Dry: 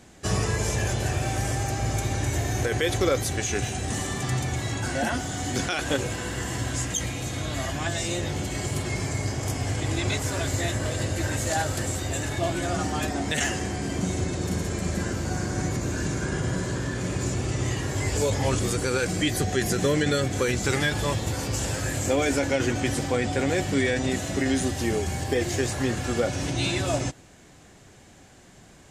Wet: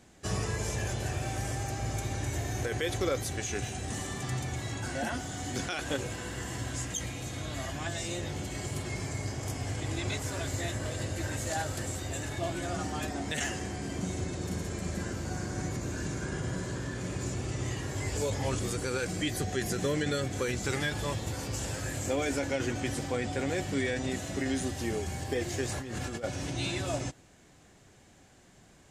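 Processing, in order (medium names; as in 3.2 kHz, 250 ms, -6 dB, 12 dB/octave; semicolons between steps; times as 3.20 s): 25.69–26.24 s: compressor with a negative ratio -30 dBFS, ratio -1; trim -7 dB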